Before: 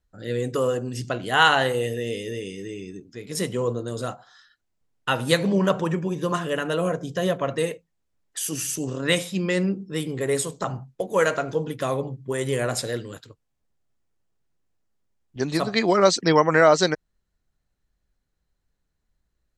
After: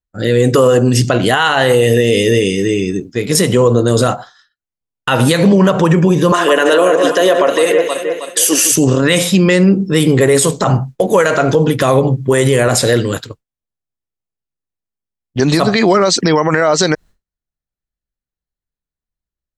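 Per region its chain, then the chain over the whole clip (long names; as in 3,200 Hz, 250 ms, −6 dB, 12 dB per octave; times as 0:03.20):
0:06.32–0:08.72: high-pass filter 300 Hz 24 dB per octave + notch filter 1,300 Hz, Q 29 + delay that swaps between a low-pass and a high-pass 158 ms, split 2,400 Hz, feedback 70%, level −8 dB
whole clip: downward expander −41 dBFS; downward compressor 4 to 1, threshold −22 dBFS; boost into a limiter +21 dB; level −1 dB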